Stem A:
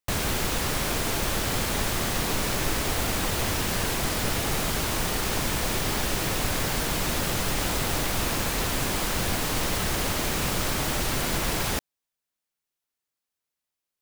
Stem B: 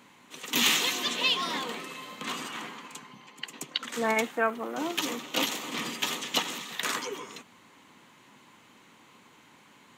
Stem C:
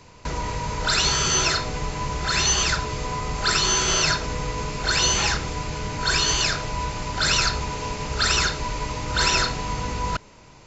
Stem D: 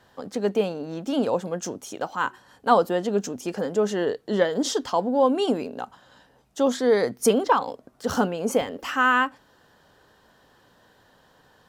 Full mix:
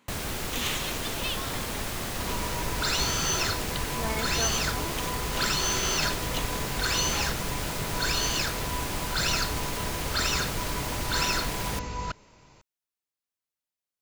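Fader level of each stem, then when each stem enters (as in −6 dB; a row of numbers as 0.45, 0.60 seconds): −6.0 dB, −8.0 dB, −7.0 dB, muted; 0.00 s, 0.00 s, 1.95 s, muted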